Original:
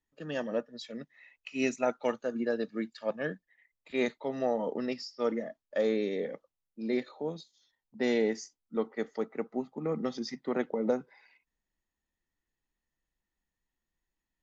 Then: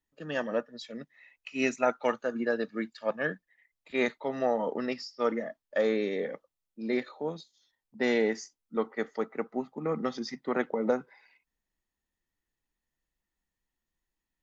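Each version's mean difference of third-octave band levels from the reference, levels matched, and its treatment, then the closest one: 1.0 dB: dynamic bell 1.4 kHz, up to +7 dB, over -48 dBFS, Q 0.77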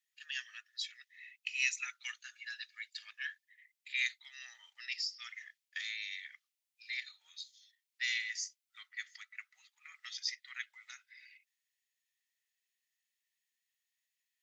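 16.5 dB: steep high-pass 1.9 kHz 36 dB/octave; trim +5.5 dB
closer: first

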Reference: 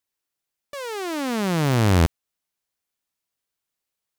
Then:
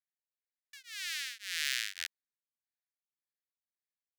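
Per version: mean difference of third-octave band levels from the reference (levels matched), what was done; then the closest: 17.0 dB: local Wiener filter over 15 samples; elliptic high-pass 1.7 kHz, stop band 50 dB; dynamic bell 3.9 kHz, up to +4 dB, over -44 dBFS, Q 0.71; tremolo of two beating tones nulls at 1.8 Hz; trim -2 dB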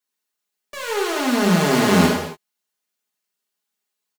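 5.5 dB: high-pass 190 Hz 12 dB/octave; comb 4.8 ms, depth 75%; in parallel at -5.5 dB: bit crusher 5-bit; on the sum: gated-style reverb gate 310 ms falling, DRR -3 dB; trim -4 dB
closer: second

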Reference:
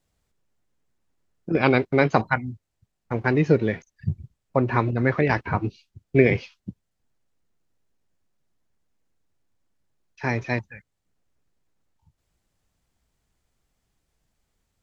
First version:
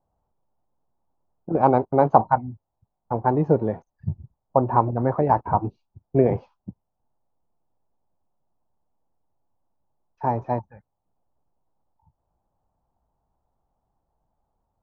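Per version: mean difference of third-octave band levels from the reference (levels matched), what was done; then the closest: 5.5 dB: FFT filter 420 Hz 0 dB, 870 Hz +12 dB, 2.1 kHz -22 dB; trim -1.5 dB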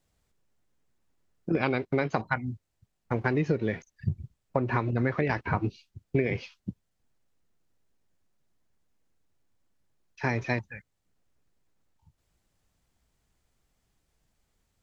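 2.0 dB: compression 10:1, threshold -22 dBFS, peak gain reduction 12 dB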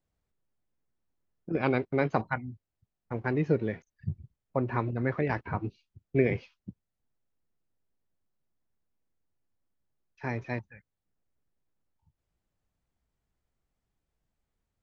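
1.0 dB: treble shelf 3 kHz -9 dB; trim -7.5 dB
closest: third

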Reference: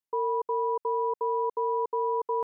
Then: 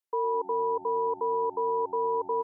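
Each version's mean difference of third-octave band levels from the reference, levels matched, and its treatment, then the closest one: 4.5 dB: steep high-pass 300 Hz; frequency-shifting echo 105 ms, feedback 53%, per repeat -87 Hz, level -19 dB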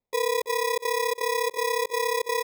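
15.0 dB: sample-and-hold 30×; on a send: feedback delay 329 ms, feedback 19%, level -9 dB; on the sum: trim +2.5 dB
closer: first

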